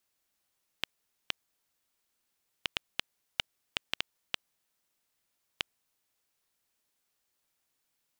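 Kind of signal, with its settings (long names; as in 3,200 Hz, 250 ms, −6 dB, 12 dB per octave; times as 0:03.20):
Geiger counter clicks 2.3 per second −10 dBFS 5.29 s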